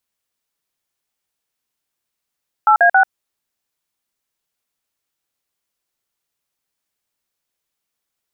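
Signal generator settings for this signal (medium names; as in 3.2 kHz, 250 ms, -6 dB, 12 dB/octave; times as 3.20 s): DTMF "8A6", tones 90 ms, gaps 47 ms, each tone -10.5 dBFS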